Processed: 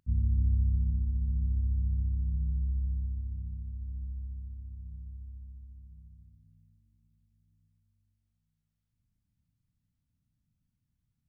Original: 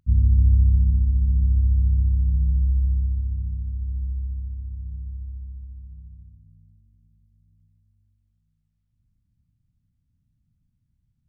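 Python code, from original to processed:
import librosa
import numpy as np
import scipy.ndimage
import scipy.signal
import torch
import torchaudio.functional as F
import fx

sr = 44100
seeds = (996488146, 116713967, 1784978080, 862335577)

y = fx.low_shelf(x, sr, hz=180.0, db=-9.0)
y = y * 10.0 ** (-2.5 / 20.0)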